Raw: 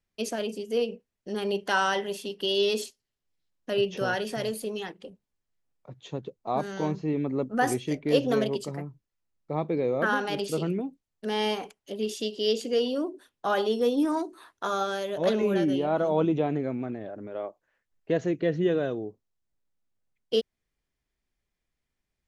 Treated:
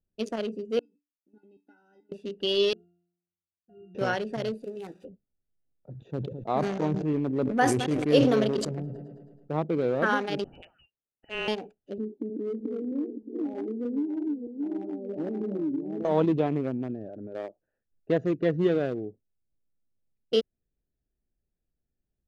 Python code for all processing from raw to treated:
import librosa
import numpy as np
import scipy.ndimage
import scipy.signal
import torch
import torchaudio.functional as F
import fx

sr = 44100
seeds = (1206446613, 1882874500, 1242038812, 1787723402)

y = fx.chain(x, sr, fx.level_steps(step_db=15),
    fx.comb_fb(f0_hz=290.0, decay_s=0.22, harmonics='odd', damping=0.0, mix_pct=100), at=(0.79, 2.12))
y = fx.chain(y, sr, fx.leveller(passes=1),
    fx.octave_resonator(note='F', decay_s=0.75), at=(2.73, 3.95))
y = fx.chain(y, sr, fx.crossing_spikes(level_db=-29.0),
    fx.notch_comb(f0_hz=220.0), at=(4.63, 5.05))
y = fx.chain(y, sr, fx.echo_heads(ms=107, heads='first and second', feedback_pct=44, wet_db=-21),
    fx.sustainer(db_per_s=38.0), at=(5.91, 9.52))
y = fx.chain(y, sr, fx.steep_highpass(hz=610.0, slope=96),
    fx.freq_invert(carrier_hz=3600), at=(10.44, 11.48))
y = fx.chain(y, sr, fx.reverse_delay_fb(ms=311, feedback_pct=44, wet_db=-3),
    fx.formant_cascade(vowel='u'),
    fx.band_squash(depth_pct=100), at=(11.98, 16.05))
y = fx.wiener(y, sr, points=41)
y = scipy.signal.sosfilt(scipy.signal.butter(2, 9100.0, 'lowpass', fs=sr, output='sos'), y)
y = F.gain(torch.from_numpy(y), 1.5).numpy()